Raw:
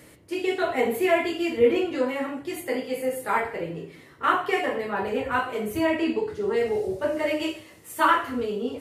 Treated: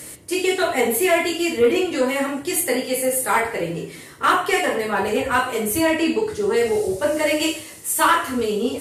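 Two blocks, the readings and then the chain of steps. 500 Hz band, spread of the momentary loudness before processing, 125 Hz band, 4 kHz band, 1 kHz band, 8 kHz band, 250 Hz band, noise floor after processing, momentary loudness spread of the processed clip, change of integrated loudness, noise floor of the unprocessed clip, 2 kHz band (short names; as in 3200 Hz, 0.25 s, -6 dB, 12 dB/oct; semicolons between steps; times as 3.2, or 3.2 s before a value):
+4.5 dB, 10 LU, +5.5 dB, +9.0 dB, +4.5 dB, +18.5 dB, +4.5 dB, -39 dBFS, 6 LU, +5.5 dB, -51 dBFS, +6.0 dB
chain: bell 9300 Hz +15 dB 1.7 oct; in parallel at -2 dB: vocal rider within 4 dB 0.5 s; on the sum: soft clip -7.5 dBFS, distortion -20 dB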